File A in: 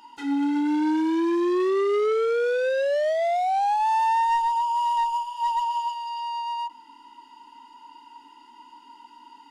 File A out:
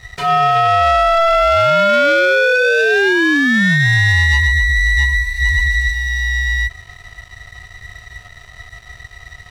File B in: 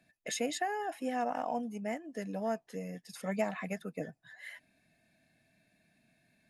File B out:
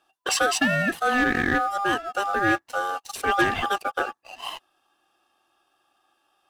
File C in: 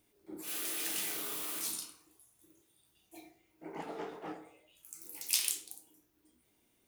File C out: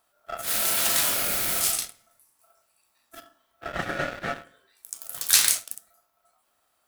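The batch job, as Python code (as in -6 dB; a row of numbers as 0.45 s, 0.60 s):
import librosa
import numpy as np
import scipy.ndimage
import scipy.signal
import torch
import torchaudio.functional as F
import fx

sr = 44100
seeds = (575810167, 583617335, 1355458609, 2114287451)

y = x * np.sin(2.0 * np.pi * 1000.0 * np.arange(len(x)) / sr)
y = fx.leveller(y, sr, passes=2)
y = F.gain(torch.from_numpy(y), 9.0).numpy()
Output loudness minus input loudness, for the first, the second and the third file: +11.0 LU, +13.0 LU, +13.0 LU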